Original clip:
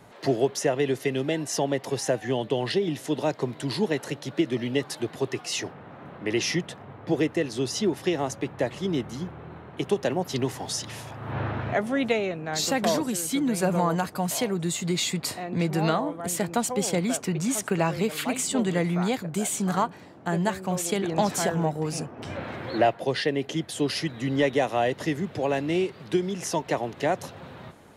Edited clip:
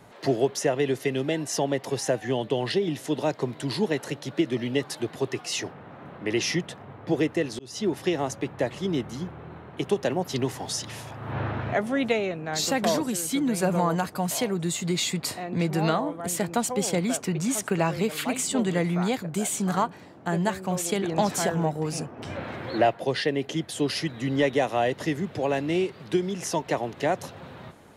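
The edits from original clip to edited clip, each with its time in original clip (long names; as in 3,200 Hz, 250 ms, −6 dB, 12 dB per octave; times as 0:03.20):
0:07.59–0:07.92: fade in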